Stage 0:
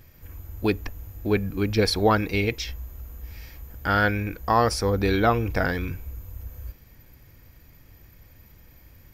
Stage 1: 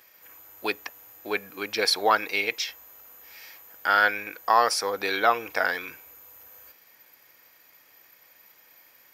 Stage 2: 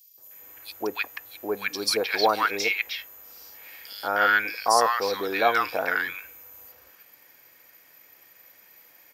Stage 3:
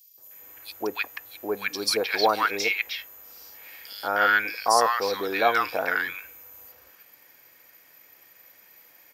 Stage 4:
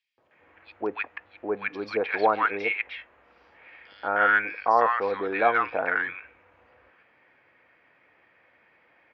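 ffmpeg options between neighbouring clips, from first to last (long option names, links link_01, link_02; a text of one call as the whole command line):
ffmpeg -i in.wav -af "highpass=710,volume=3dB" out.wav
ffmpeg -i in.wav -filter_complex "[0:a]acrossover=split=1100|4100[link_01][link_02][link_03];[link_01]adelay=180[link_04];[link_02]adelay=310[link_05];[link_04][link_05][link_03]amix=inputs=3:normalize=0,volume=2.5dB" out.wav
ffmpeg -i in.wav -af anull out.wav
ffmpeg -i in.wav -af "lowpass=frequency=2500:width=0.5412,lowpass=frequency=2500:width=1.3066" out.wav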